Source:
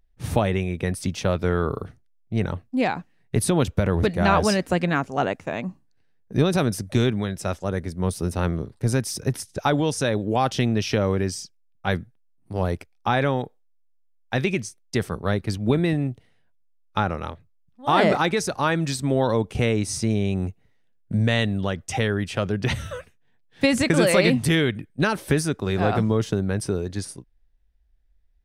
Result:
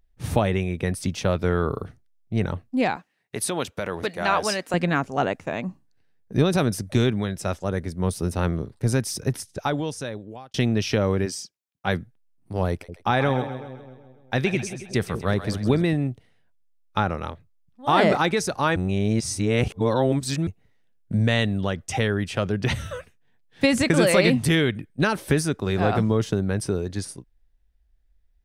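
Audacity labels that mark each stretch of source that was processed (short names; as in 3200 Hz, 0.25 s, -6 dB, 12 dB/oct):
2.960000	4.740000	HPF 700 Hz 6 dB/oct
9.220000	10.540000	fade out
11.250000	12.000000	HPF 260 Hz -> 73 Hz
12.700000	15.830000	split-band echo split 620 Hz, lows 0.185 s, highs 0.131 s, level -11 dB
18.760000	20.470000	reverse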